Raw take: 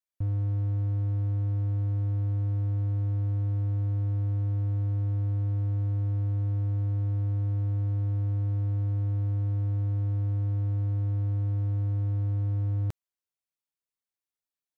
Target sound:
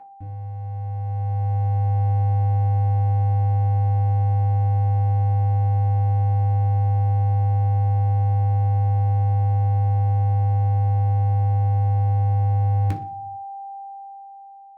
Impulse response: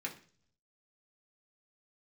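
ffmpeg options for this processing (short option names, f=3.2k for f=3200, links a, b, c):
-filter_complex "[0:a]aeval=exprs='val(0)+0.0178*sin(2*PI*790*n/s)':c=same,dynaudnorm=f=510:g=5:m=13dB[a];[1:a]atrim=start_sample=2205[b];[a][b]afir=irnorm=-1:irlink=0,volume=-2.5dB"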